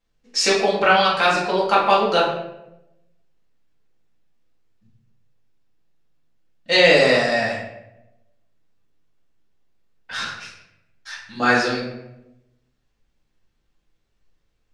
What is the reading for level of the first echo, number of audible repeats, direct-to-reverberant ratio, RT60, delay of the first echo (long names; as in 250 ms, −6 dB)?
no echo audible, no echo audible, −6.5 dB, 0.90 s, no echo audible